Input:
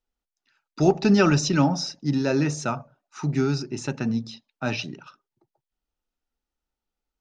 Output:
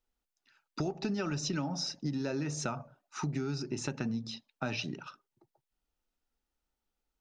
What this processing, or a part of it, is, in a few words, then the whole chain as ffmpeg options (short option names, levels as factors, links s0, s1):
serial compression, peaks first: -af "acompressor=threshold=0.0501:ratio=6,acompressor=threshold=0.02:ratio=2"